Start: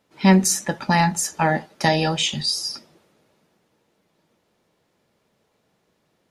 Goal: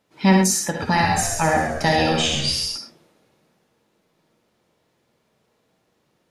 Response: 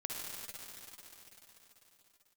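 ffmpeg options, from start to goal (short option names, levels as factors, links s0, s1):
-filter_complex "[0:a]asettb=1/sr,asplit=3[s0][s1][s2];[s0]atrim=end=0.654[s3];[s1]atrim=start=0.65:end=2.66,asetpts=PTS-STARTPTS,afade=t=in:d=0.004:c=qsin,afade=t=out:st=2.006:d=0.004:c=qsin,asplit=6[s4][s5][s6][s7][s8][s9];[s5]adelay=135,afreqshift=-80,volume=0.447[s10];[s6]adelay=270,afreqshift=-160,volume=0.197[s11];[s7]adelay=405,afreqshift=-240,volume=0.0861[s12];[s8]adelay=540,afreqshift=-320,volume=0.038[s13];[s9]adelay=675,afreqshift=-400,volume=0.0168[s14];[s4][s10][s11][s12][s13][s14]amix=inputs=6:normalize=0,atrim=end_sample=88641[s15];[s2]atrim=start=2.656[s16];[s3][s15]acrossfade=d=0.004:c1=hsin:c2=qsin[s17];[s17][s16]acrossfade=d=0.004:c1=qsin:c2=hsin[s18];[1:a]atrim=start_sample=2205,afade=t=out:st=0.17:d=0.01,atrim=end_sample=7938[s19];[s18][s19]afir=irnorm=-1:irlink=0,volume=1.33"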